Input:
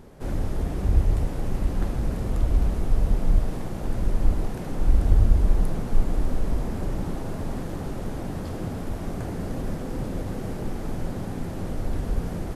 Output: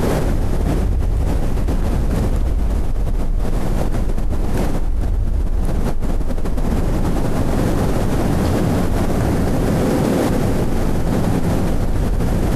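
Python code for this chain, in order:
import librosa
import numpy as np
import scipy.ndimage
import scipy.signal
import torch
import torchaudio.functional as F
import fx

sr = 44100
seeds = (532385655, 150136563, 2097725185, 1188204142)

y = fx.highpass(x, sr, hz=fx.line((9.62, 52.0), (10.28, 210.0)), slope=12, at=(9.62, 10.28), fade=0.02)
y = fx.echo_feedback(y, sr, ms=195, feedback_pct=60, wet_db=-11)
y = fx.env_flatten(y, sr, amount_pct=100)
y = y * librosa.db_to_amplitude(-5.5)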